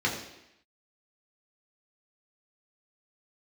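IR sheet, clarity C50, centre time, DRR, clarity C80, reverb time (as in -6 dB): 6.0 dB, 32 ms, -3.5 dB, 8.0 dB, 0.85 s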